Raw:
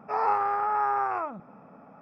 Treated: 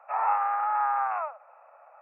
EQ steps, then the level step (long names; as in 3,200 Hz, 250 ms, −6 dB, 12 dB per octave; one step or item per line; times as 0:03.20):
Butterworth high-pass 550 Hz 72 dB per octave
linear-phase brick-wall low-pass 3,000 Hz
0.0 dB